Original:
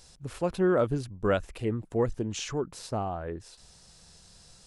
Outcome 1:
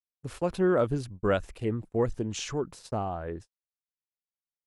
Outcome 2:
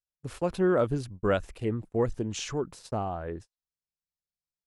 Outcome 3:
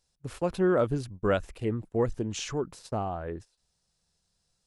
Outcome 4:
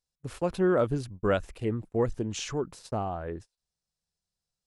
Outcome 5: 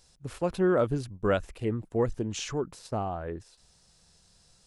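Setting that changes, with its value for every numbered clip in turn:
gate, range: -60 dB, -47 dB, -21 dB, -34 dB, -7 dB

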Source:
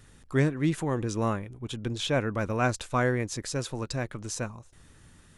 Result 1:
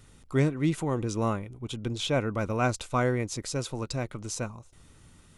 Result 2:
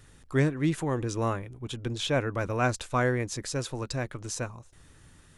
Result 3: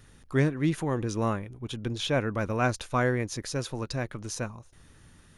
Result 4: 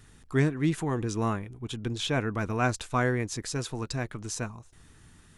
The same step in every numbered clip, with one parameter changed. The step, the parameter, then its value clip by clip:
band-stop, frequency: 1.7 kHz, 210 Hz, 7.7 kHz, 550 Hz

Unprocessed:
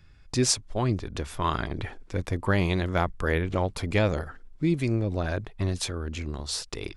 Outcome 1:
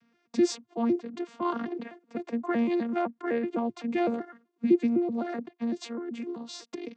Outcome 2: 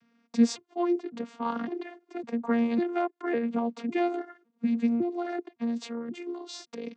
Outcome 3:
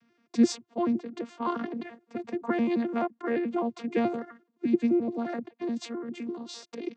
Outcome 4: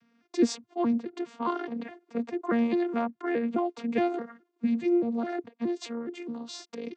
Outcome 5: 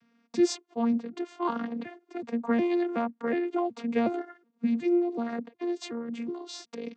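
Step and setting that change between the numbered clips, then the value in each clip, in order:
vocoder on a broken chord, a note every: 127 ms, 555 ms, 86 ms, 209 ms, 369 ms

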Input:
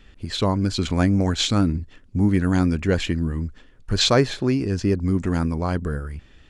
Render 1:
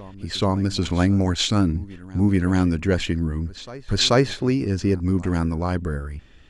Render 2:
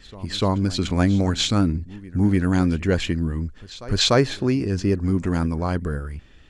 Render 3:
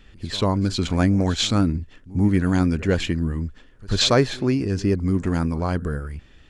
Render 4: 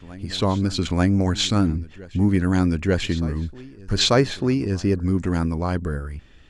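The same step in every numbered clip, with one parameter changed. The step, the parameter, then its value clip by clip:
reverse echo, time: 434 ms, 295 ms, 91 ms, 891 ms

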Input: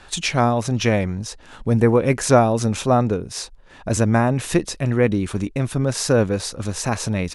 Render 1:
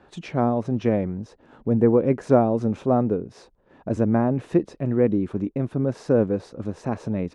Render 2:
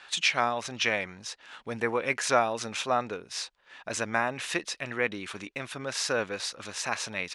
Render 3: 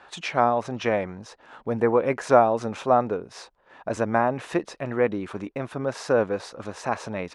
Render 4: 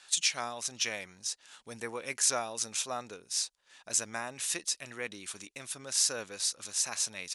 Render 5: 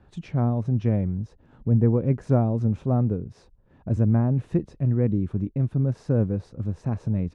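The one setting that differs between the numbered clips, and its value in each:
band-pass filter, frequency: 310 Hz, 2.5 kHz, 880 Hz, 7.6 kHz, 120 Hz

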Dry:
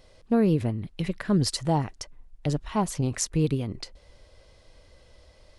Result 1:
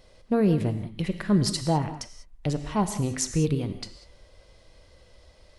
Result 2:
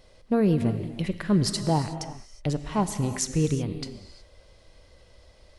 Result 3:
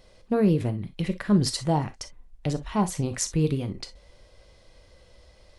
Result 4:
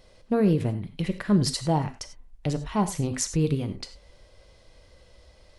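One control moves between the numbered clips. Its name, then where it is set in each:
gated-style reverb, gate: 220 ms, 390 ms, 80 ms, 120 ms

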